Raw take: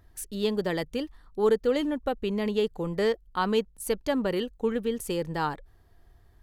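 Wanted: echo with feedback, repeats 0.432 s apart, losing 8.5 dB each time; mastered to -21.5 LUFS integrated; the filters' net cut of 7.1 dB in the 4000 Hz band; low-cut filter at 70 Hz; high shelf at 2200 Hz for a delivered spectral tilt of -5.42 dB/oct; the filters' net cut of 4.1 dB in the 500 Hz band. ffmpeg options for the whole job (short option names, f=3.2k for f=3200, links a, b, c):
-af "highpass=70,equalizer=f=500:t=o:g=-4.5,highshelf=f=2.2k:g=-4.5,equalizer=f=4k:t=o:g=-5.5,aecho=1:1:432|864|1296|1728:0.376|0.143|0.0543|0.0206,volume=9.5dB"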